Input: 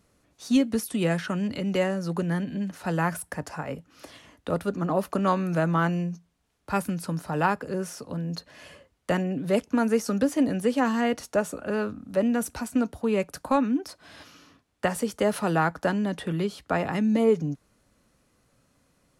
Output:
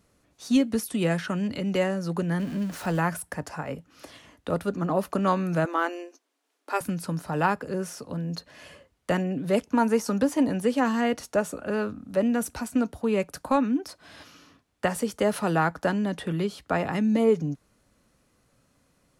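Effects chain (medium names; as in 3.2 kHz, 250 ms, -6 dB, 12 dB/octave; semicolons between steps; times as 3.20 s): 2.39–3.00 s: jump at every zero crossing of -37.5 dBFS; 5.65–6.81 s: brick-wall FIR high-pass 250 Hz; 9.72–10.62 s: peaking EQ 940 Hz +9 dB 0.29 oct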